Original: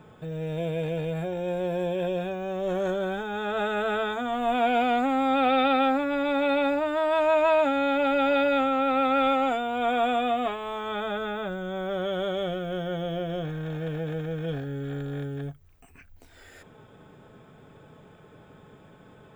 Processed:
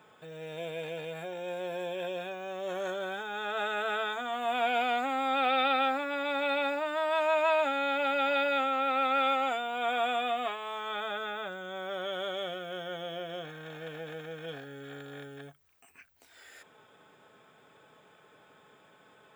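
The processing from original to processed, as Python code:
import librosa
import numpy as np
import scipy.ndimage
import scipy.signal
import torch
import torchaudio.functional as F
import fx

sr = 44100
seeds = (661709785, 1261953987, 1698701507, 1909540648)

y = fx.highpass(x, sr, hz=1100.0, slope=6)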